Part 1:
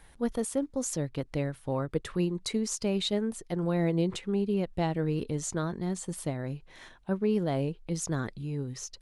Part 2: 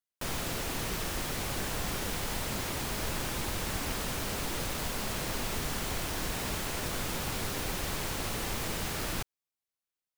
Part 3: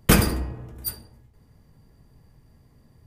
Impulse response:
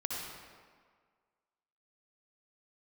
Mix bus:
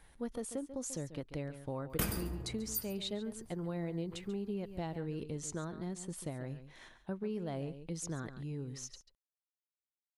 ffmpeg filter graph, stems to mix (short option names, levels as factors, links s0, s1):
-filter_complex "[0:a]volume=0.531,asplit=2[s0][s1];[s1]volume=0.2[s2];[2:a]highshelf=f=9700:g=8.5,adelay=1900,volume=0.473,asplit=2[s3][s4];[s4]volume=0.0944[s5];[s2][s5]amix=inputs=2:normalize=0,aecho=0:1:139:1[s6];[s0][s3][s6]amix=inputs=3:normalize=0,acompressor=threshold=0.0141:ratio=2.5"